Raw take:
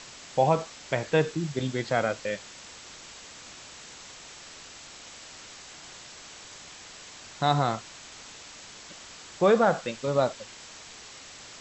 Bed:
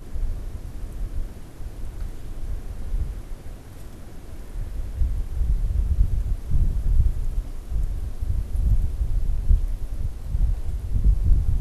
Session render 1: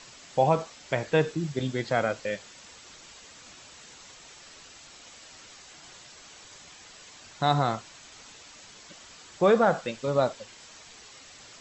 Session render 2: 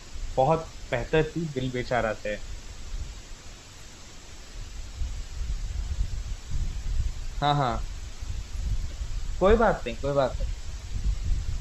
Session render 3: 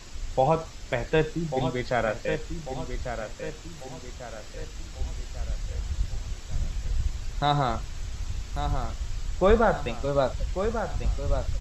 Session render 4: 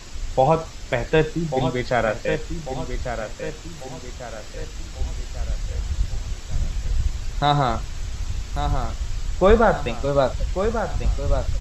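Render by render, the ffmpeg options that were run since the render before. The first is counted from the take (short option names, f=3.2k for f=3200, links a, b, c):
-af "afftdn=nr=6:nf=-47"
-filter_complex "[1:a]volume=-9dB[a];[0:a][a]amix=inputs=2:normalize=0"
-filter_complex "[0:a]asplit=2[a][b];[b]adelay=1144,lowpass=f=3.2k:p=1,volume=-8dB,asplit=2[c][d];[d]adelay=1144,lowpass=f=3.2k:p=1,volume=0.46,asplit=2[e][f];[f]adelay=1144,lowpass=f=3.2k:p=1,volume=0.46,asplit=2[g][h];[h]adelay=1144,lowpass=f=3.2k:p=1,volume=0.46,asplit=2[i][j];[j]adelay=1144,lowpass=f=3.2k:p=1,volume=0.46[k];[a][c][e][g][i][k]amix=inputs=6:normalize=0"
-af "volume=5dB"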